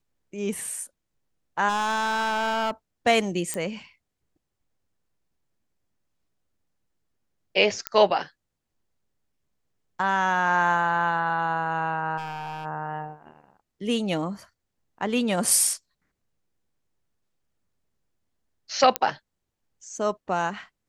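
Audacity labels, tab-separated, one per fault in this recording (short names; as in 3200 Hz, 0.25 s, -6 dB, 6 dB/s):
1.680000	2.710000	clipped -21.5 dBFS
3.540000	3.540000	pop -13 dBFS
7.870000	7.870000	pop -9 dBFS
12.170000	12.660000	clipped -29 dBFS
18.960000	18.960000	pop -5 dBFS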